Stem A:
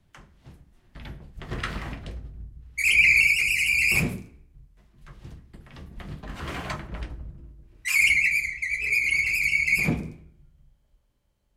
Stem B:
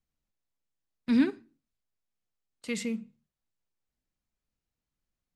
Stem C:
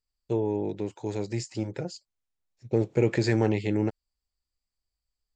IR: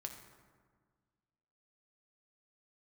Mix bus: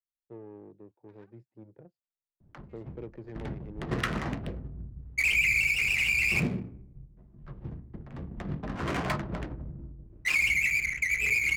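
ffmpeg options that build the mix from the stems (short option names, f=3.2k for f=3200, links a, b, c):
-filter_complex "[0:a]lowshelf=f=450:g=5.5,adelay=2400,volume=2dB,asplit=2[a][b];[b]volume=-18.5dB[c];[1:a]highpass=f=790:w=0.5412,highpass=f=790:w=1.3066,volume=-16.5dB[d];[2:a]volume=-17.5dB[e];[3:a]atrim=start_sample=2205[f];[c][f]afir=irnorm=-1:irlink=0[g];[a][d][e][g]amix=inputs=4:normalize=0,adynamicsmooth=sensitivity=5.5:basefreq=550,lowshelf=f=70:g=-10,acrossover=split=120|4200[h][i][j];[h]acompressor=threshold=-39dB:ratio=4[k];[i]acompressor=threshold=-25dB:ratio=4[l];[j]acompressor=threshold=-43dB:ratio=4[m];[k][l][m]amix=inputs=3:normalize=0"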